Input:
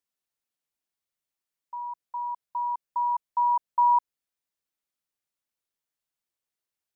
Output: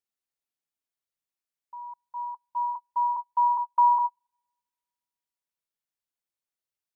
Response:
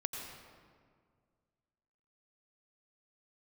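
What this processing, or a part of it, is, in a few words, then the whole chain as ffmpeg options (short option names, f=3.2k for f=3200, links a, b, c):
keyed gated reverb: -filter_complex "[0:a]asplit=3[a][b][c];[1:a]atrim=start_sample=2205[d];[b][d]afir=irnorm=-1:irlink=0[e];[c]apad=whole_len=306693[f];[e][f]sidechaingate=range=-42dB:threshold=-31dB:ratio=16:detection=peak,volume=1.5dB[g];[a][g]amix=inputs=2:normalize=0,volume=-5dB"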